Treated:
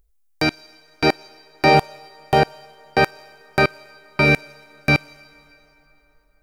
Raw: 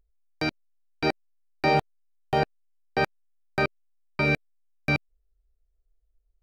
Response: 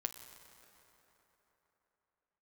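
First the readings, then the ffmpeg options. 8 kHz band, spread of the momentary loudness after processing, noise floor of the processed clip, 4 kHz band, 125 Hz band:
n/a, 9 LU, -60 dBFS, +9.5 dB, +7.5 dB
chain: -filter_complex "[0:a]asplit=2[a][b];[b]bass=f=250:g=-13,treble=f=4k:g=10[c];[1:a]atrim=start_sample=2205,highshelf=f=5.7k:g=10[d];[c][d]afir=irnorm=-1:irlink=0,volume=-12.5dB[e];[a][e]amix=inputs=2:normalize=0,volume=7dB"

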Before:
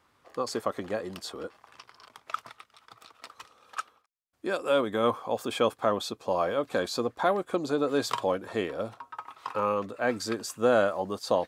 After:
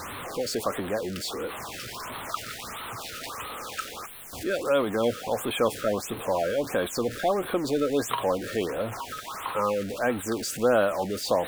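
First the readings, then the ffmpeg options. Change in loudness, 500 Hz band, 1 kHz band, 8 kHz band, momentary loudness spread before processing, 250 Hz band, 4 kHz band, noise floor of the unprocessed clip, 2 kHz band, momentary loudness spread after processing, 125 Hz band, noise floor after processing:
+1.0 dB, +2.0 dB, +0.5 dB, +6.5 dB, 14 LU, +2.5 dB, +3.0 dB, -68 dBFS, +2.0 dB, 11 LU, +4.0 dB, -39 dBFS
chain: -af "aeval=exprs='val(0)+0.5*0.0282*sgn(val(0))':c=same,afftfilt=real='re*(1-between(b*sr/1024,850*pow(6200/850,0.5+0.5*sin(2*PI*1.5*pts/sr))/1.41,850*pow(6200/850,0.5+0.5*sin(2*PI*1.5*pts/sr))*1.41))':imag='im*(1-between(b*sr/1024,850*pow(6200/850,0.5+0.5*sin(2*PI*1.5*pts/sr))/1.41,850*pow(6200/850,0.5+0.5*sin(2*PI*1.5*pts/sr))*1.41))':win_size=1024:overlap=0.75"

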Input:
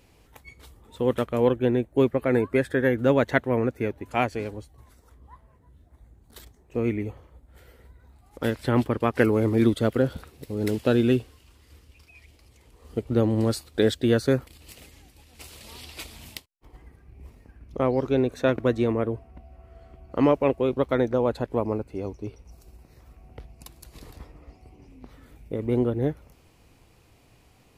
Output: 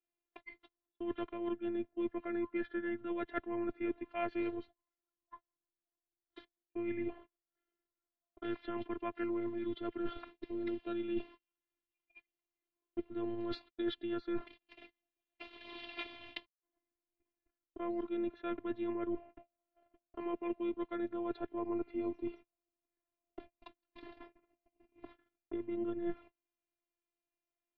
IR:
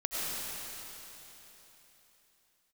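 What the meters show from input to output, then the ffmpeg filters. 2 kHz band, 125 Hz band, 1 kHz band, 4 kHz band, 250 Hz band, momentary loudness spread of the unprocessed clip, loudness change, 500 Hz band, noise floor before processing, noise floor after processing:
-15.5 dB, -29.0 dB, -14.0 dB, -13.0 dB, -12.5 dB, 18 LU, -15.0 dB, -16.5 dB, -58 dBFS, under -85 dBFS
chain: -af "highpass=f=150:t=q:w=0.5412,highpass=f=150:t=q:w=1.307,lowpass=f=3.6k:t=q:w=0.5176,lowpass=f=3.6k:t=q:w=0.7071,lowpass=f=3.6k:t=q:w=1.932,afreqshift=-57,areverse,acompressor=threshold=-31dB:ratio=20,areverse,agate=range=-34dB:threshold=-50dB:ratio=16:detection=peak,afftfilt=real='hypot(re,im)*cos(PI*b)':imag='0':win_size=512:overlap=0.75,volume=2dB"

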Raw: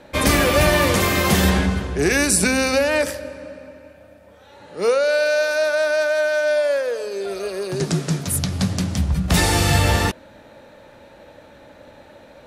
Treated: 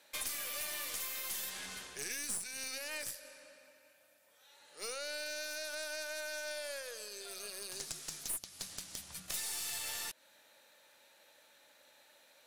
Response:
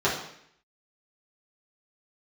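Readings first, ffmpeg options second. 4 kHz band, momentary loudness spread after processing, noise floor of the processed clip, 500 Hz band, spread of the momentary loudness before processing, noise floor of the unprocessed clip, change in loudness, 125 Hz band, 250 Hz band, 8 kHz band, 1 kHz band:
-16.5 dB, 8 LU, -66 dBFS, -28.5 dB, 11 LU, -47 dBFS, -20.5 dB, under -40 dB, -36.5 dB, -14.0 dB, -27.0 dB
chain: -af "aderivative,acompressor=threshold=-36dB:ratio=4,aeval=exprs='(tanh(28.2*val(0)+0.55)-tanh(0.55))/28.2':c=same"

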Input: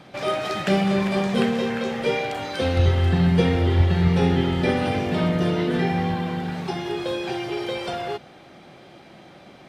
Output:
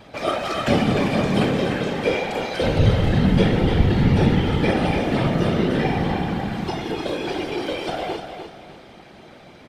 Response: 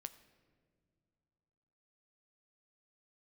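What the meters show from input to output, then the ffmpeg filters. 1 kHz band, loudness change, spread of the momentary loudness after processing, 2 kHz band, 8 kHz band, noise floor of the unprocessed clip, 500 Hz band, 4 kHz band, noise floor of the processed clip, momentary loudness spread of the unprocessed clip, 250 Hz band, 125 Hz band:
+2.0 dB, +1.5 dB, 9 LU, +2.0 dB, n/a, -47 dBFS, +1.5 dB, +1.5 dB, -45 dBFS, 9 LU, +2.0 dB, +1.5 dB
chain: -af "afftfilt=real='hypot(re,im)*cos(2*PI*random(0))':imag='hypot(re,im)*sin(2*PI*random(1))':win_size=512:overlap=0.75,aecho=1:1:300|600|900|1200:0.398|0.131|0.0434|0.0143,volume=7dB"

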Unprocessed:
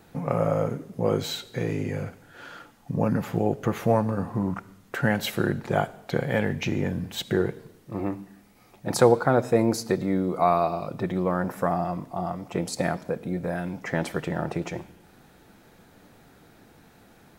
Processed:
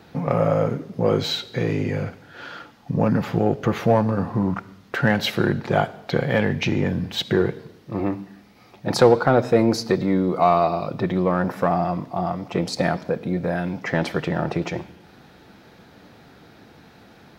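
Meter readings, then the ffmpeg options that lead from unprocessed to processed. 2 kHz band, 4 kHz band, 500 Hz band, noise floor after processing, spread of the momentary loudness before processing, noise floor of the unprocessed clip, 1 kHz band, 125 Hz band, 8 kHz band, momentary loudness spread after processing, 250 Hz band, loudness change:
+5.0 dB, +7.0 dB, +4.0 dB, -50 dBFS, 12 LU, -56 dBFS, +4.0 dB, +4.5 dB, -1.0 dB, 11 LU, +4.5 dB, +4.5 dB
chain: -filter_complex "[0:a]highpass=56,highshelf=f=6.3k:t=q:w=1.5:g=-8.5,asplit=2[a][b];[b]asoftclip=type=tanh:threshold=-20dB,volume=-4.5dB[c];[a][c]amix=inputs=2:normalize=0,volume=1.5dB"

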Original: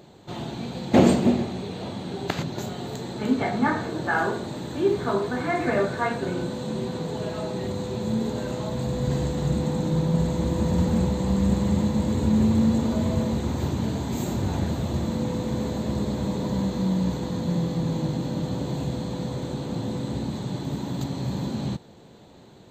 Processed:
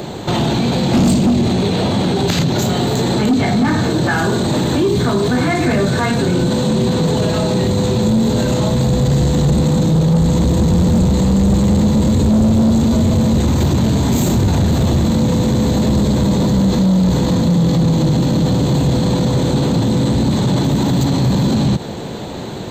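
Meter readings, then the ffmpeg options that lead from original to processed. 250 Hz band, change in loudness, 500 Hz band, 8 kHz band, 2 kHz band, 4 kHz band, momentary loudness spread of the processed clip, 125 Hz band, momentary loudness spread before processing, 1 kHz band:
+11.0 dB, +11.0 dB, +9.0 dB, +14.5 dB, +8.0 dB, +14.5 dB, 3 LU, +13.0 dB, 9 LU, +8.5 dB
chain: -filter_complex "[0:a]acrossover=split=260|3000[a][b][c];[b]acompressor=threshold=-35dB:ratio=6[d];[a][d][c]amix=inputs=3:normalize=0,asoftclip=type=tanh:threshold=-24dB,alimiter=level_in=31.5dB:limit=-1dB:release=50:level=0:latency=1,volume=-8dB"

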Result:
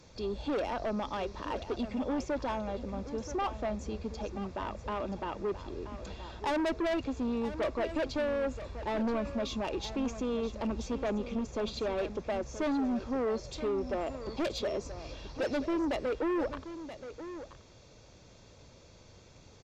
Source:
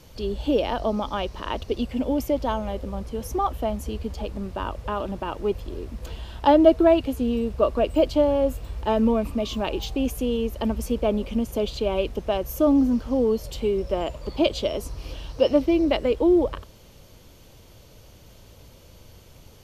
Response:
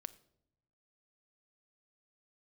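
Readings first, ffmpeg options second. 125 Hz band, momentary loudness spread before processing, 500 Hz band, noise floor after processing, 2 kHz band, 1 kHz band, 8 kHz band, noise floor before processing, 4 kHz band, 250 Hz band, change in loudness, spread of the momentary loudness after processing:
-10.0 dB, 12 LU, -10.5 dB, -56 dBFS, -3.5 dB, -8.5 dB, -6.5 dB, -50 dBFS, -9.0 dB, -10.5 dB, -10.5 dB, 10 LU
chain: -filter_complex "[0:a]lowshelf=f=69:g=-10,aresample=16000,asoftclip=type=tanh:threshold=-13dB,aresample=44100,asuperstop=centerf=3000:order=4:qfactor=7.9,aeval=exprs='0.251*(cos(1*acos(clip(val(0)/0.251,-1,1)))-cos(1*PI/2))+0.0708*(cos(3*acos(clip(val(0)/0.251,-1,1)))-cos(3*PI/2))+0.0562*(cos(5*acos(clip(val(0)/0.251,-1,1)))-cos(5*PI/2))':c=same,volume=22dB,asoftclip=hard,volume=-22dB,asplit=2[a][b];[b]aecho=0:1:978:0.251[c];[a][c]amix=inputs=2:normalize=0,volume=-6.5dB" -ar 48000 -c:a libmp3lame -b:a 320k

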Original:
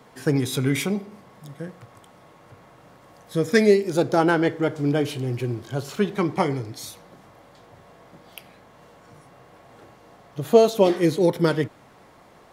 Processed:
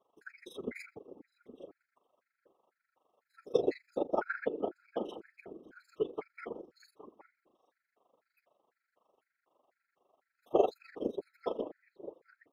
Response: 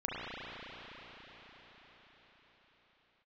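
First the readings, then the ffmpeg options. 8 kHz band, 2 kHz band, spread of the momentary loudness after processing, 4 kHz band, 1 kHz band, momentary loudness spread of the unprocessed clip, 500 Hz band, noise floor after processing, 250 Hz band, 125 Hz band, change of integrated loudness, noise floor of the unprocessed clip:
under -25 dB, -16.0 dB, 21 LU, -21.5 dB, -13.0 dB, 18 LU, -14.0 dB, under -85 dBFS, -19.5 dB, -31.5 dB, -14.5 dB, -52 dBFS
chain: -filter_complex "[0:a]highpass=f=350:w=0.5412,highpass=f=350:w=1.3066,afftdn=nr=12:nf=-35,equalizer=f=8.8k:t=o:w=2.1:g=-13,tremolo=f=24:d=0.889,afftfilt=real='hypot(re,im)*cos(2*PI*random(0))':imag='hypot(re,im)*sin(2*PI*random(1))':win_size=512:overlap=0.75,asplit=2[a][b];[b]adelay=816.3,volume=-15dB,highshelf=f=4k:g=-18.4[c];[a][c]amix=inputs=2:normalize=0,afftfilt=real='re*gt(sin(2*PI*2*pts/sr)*(1-2*mod(floor(b*sr/1024/1300),2)),0)':imag='im*gt(sin(2*PI*2*pts/sr)*(1-2*mod(floor(b*sr/1024/1300),2)),0)':win_size=1024:overlap=0.75"

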